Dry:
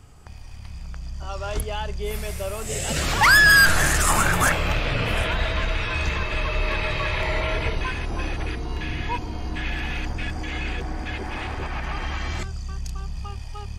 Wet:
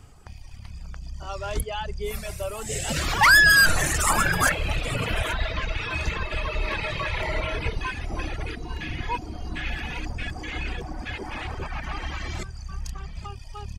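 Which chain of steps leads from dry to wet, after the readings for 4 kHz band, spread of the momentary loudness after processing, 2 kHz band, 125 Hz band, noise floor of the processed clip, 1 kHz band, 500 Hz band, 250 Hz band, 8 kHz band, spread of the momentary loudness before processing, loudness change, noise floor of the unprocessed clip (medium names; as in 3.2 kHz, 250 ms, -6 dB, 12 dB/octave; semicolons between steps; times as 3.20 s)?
-1.5 dB, 18 LU, -1.5 dB, -3.5 dB, -40 dBFS, -1.5 dB, -3.0 dB, -3.0 dB, -2.0 dB, 16 LU, -2.0 dB, -36 dBFS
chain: delay 831 ms -15 dB; reverb removal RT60 1.7 s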